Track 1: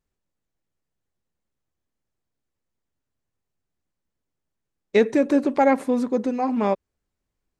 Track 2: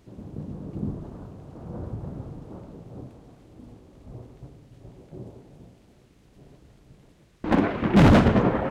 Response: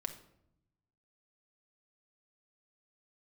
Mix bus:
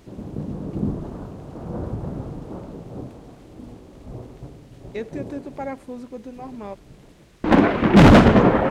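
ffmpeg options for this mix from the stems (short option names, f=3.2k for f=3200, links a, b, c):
-filter_complex "[0:a]volume=-13dB[a];[1:a]equalizer=f=100:t=o:w=1.5:g=-4,acontrast=90,volume=0.5dB[b];[a][b]amix=inputs=2:normalize=0"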